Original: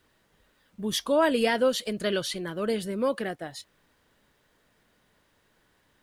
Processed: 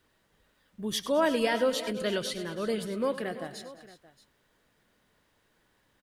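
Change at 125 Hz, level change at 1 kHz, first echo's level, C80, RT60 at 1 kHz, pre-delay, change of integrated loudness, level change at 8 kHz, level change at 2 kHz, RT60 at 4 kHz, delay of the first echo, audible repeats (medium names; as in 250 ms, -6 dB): -2.5 dB, -2.5 dB, -14.5 dB, no reverb, no reverb, no reverb, -2.5 dB, -2.5 dB, -2.5 dB, no reverb, 100 ms, 4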